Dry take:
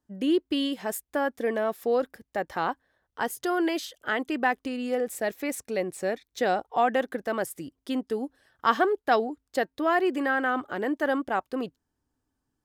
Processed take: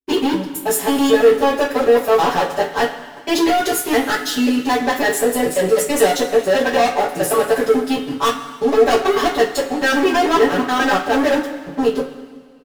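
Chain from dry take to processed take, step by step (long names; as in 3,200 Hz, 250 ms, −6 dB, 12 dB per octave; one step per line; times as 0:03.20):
slices reordered back to front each 109 ms, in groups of 5
comb filter 7 ms, depth 89%
leveller curve on the samples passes 5
coupled-rooms reverb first 0.23 s, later 1.8 s, from −18 dB, DRR −10 dB
level −14.5 dB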